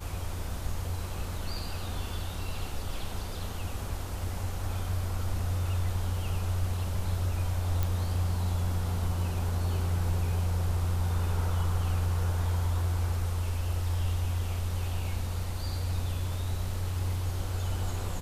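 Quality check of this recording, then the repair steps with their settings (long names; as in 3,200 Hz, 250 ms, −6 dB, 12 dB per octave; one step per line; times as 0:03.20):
0:07.83: click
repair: click removal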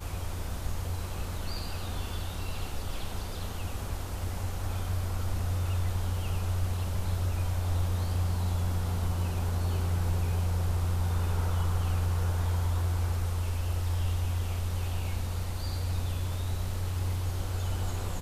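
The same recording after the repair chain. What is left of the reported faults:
none of them is left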